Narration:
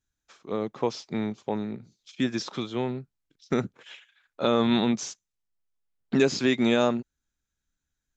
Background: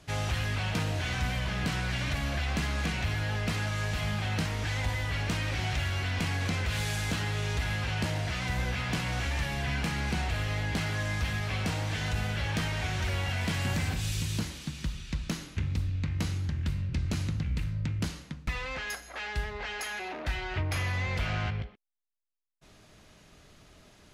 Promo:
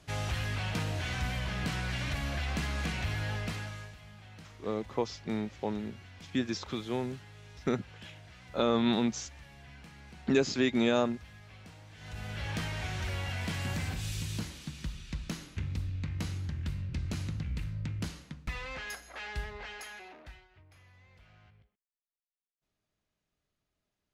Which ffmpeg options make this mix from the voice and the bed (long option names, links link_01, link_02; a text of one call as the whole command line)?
ffmpeg -i stem1.wav -i stem2.wav -filter_complex "[0:a]adelay=4150,volume=-4.5dB[link_01];[1:a]volume=13dB,afade=type=out:start_time=3.3:duration=0.66:silence=0.133352,afade=type=in:start_time=11.96:duration=0.55:silence=0.158489,afade=type=out:start_time=19.4:duration=1.08:silence=0.0595662[link_02];[link_01][link_02]amix=inputs=2:normalize=0" out.wav